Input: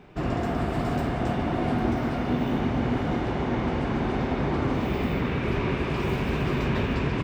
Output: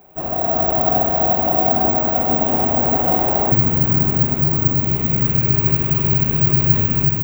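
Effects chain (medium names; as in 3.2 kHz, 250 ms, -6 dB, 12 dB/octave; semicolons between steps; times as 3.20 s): peaking EQ 690 Hz +14.5 dB 0.99 oct, from 3.52 s 130 Hz; level rider; careless resampling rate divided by 2×, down none, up zero stuff; trim -6.5 dB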